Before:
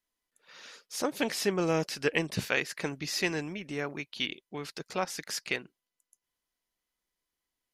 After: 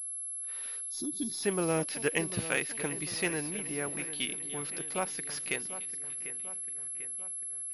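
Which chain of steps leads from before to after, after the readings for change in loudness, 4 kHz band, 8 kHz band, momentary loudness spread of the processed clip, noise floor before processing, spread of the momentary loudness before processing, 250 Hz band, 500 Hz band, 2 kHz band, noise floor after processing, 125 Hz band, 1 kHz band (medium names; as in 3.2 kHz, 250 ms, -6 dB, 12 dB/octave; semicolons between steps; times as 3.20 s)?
-1.0 dB, -4.0 dB, +9.0 dB, 5 LU, under -85 dBFS, 11 LU, -1.5 dB, -2.0 dB, -2.0 dB, -39 dBFS, -2.0 dB, -2.5 dB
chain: two-band feedback delay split 2.9 kHz, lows 745 ms, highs 293 ms, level -13 dB; time-frequency box 0.90–1.43 s, 400–3300 Hz -28 dB; class-D stage that switches slowly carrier 11 kHz; trim -2 dB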